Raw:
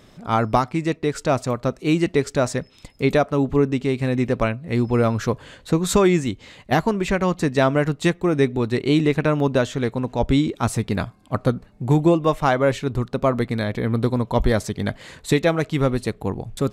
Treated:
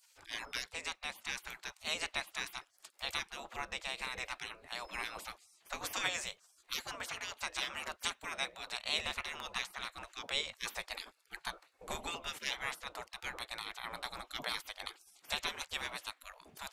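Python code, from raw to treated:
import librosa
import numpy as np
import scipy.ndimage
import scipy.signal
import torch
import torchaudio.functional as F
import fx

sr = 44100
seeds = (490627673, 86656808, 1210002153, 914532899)

y = fx.spec_gate(x, sr, threshold_db=-25, keep='weak')
y = fx.low_shelf(y, sr, hz=110.0, db=-8.0, at=(6.74, 8.95))
y = F.gain(torch.from_numpy(y), -1.5).numpy()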